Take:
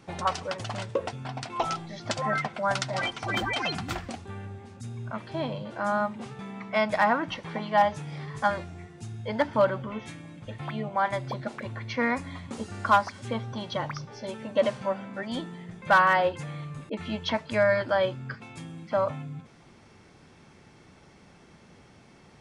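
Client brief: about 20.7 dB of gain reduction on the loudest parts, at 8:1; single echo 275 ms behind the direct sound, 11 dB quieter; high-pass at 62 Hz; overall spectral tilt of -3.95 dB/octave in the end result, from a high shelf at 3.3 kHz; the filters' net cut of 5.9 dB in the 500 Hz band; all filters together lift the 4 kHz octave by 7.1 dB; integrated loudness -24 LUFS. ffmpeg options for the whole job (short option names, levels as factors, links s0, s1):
-af "highpass=62,equalizer=f=500:t=o:g=-8,highshelf=f=3300:g=8.5,equalizer=f=4000:t=o:g=3.5,acompressor=threshold=0.0126:ratio=8,aecho=1:1:275:0.282,volume=7.08"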